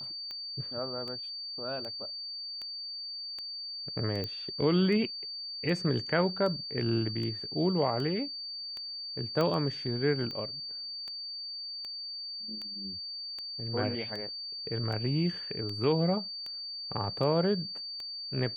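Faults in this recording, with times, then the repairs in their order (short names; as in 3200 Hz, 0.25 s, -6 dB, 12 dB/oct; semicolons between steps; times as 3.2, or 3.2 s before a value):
tick 78 rpm -27 dBFS
tone 4600 Hz -37 dBFS
4.24 pop -22 dBFS
9.41 pop -18 dBFS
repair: de-click; notch 4600 Hz, Q 30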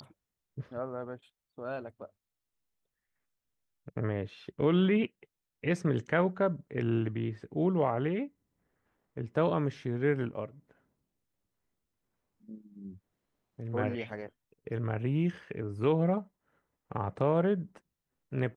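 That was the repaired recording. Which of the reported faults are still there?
9.41 pop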